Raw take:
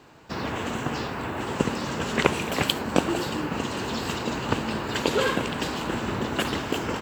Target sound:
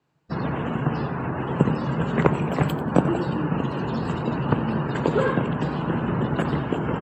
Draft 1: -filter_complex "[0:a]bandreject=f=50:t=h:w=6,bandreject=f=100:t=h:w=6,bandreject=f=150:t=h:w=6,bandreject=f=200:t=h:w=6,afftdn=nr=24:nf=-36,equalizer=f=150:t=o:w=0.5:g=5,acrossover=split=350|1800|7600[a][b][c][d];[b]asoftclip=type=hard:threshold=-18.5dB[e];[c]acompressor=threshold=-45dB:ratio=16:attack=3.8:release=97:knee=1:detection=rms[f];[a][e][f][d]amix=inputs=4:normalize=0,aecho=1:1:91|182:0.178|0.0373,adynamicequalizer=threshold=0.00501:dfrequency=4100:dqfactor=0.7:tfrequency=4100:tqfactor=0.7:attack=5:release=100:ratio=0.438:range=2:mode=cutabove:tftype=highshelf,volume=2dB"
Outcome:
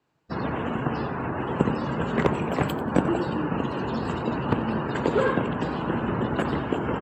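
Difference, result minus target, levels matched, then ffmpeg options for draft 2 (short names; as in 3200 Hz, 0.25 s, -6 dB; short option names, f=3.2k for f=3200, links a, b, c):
hard clip: distortion +21 dB; 125 Hz band -3.0 dB
-filter_complex "[0:a]bandreject=f=50:t=h:w=6,bandreject=f=100:t=h:w=6,bandreject=f=150:t=h:w=6,bandreject=f=200:t=h:w=6,afftdn=nr=24:nf=-36,equalizer=f=150:t=o:w=0.5:g=13,acrossover=split=350|1800|7600[a][b][c][d];[b]asoftclip=type=hard:threshold=-9dB[e];[c]acompressor=threshold=-45dB:ratio=16:attack=3.8:release=97:knee=1:detection=rms[f];[a][e][f][d]amix=inputs=4:normalize=0,aecho=1:1:91|182:0.178|0.0373,adynamicequalizer=threshold=0.00501:dfrequency=4100:dqfactor=0.7:tfrequency=4100:tqfactor=0.7:attack=5:release=100:ratio=0.438:range=2:mode=cutabove:tftype=highshelf,volume=2dB"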